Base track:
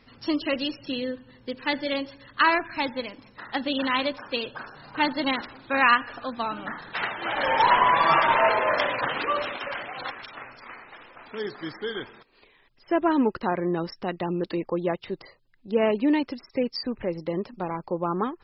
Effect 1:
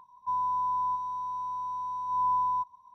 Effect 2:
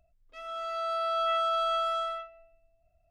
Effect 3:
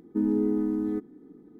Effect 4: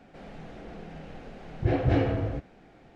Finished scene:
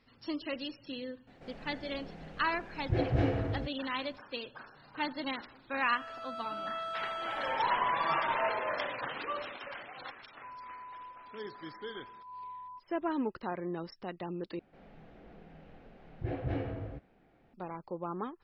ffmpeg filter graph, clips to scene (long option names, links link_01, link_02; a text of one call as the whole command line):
ffmpeg -i bed.wav -i cue0.wav -i cue1.wav -i cue2.wav -i cue3.wav -filter_complex "[4:a]asplit=2[link_01][link_02];[0:a]volume=-11dB[link_03];[1:a]lowpass=1700[link_04];[link_02]lowpass=3600[link_05];[link_03]asplit=2[link_06][link_07];[link_06]atrim=end=14.594[link_08];[link_05]atrim=end=2.95,asetpts=PTS-STARTPTS,volume=-11dB[link_09];[link_07]atrim=start=17.536[link_10];[link_01]atrim=end=2.95,asetpts=PTS-STARTPTS,volume=-5dB,afade=type=in:duration=0.004:curve=hsin,afade=type=out:start_time=2.946:duration=0.004:curve=hsin,adelay=1270[link_11];[2:a]atrim=end=3.1,asetpts=PTS-STARTPTS,volume=-10.5dB,afade=type=in:duration=0.004:curve=hsin,afade=type=out:start_time=3.096:duration=0.004:curve=hsin,adelay=5460[link_12];[link_04]atrim=end=2.94,asetpts=PTS-STARTPTS,volume=-18dB,afade=type=in:duration=0.004:curve=hsin,afade=type=out:start_time=2.936:duration=0.004:curve=hsin,adelay=10160[link_13];[link_08][link_09]acrossfade=duration=0.004:curve1=hsin:curve2=hsin[link_14];[link_14][link_10]acrossfade=duration=0.004:curve1=hsin:curve2=hsin[link_15];[link_15][link_11][link_12][link_13]amix=inputs=4:normalize=0" out.wav